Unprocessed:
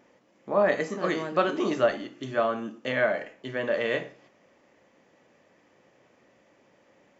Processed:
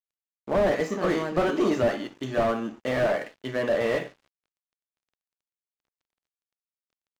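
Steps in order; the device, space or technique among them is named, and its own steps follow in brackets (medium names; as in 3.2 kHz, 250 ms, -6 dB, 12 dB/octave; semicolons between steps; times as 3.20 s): early transistor amplifier (crossover distortion -52 dBFS; slew-rate limiter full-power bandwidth 39 Hz); trim +4.5 dB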